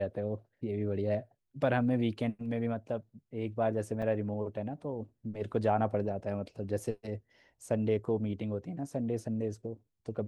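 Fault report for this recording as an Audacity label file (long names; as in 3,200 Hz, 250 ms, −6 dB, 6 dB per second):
4.020000	4.030000	drop-out 5.7 ms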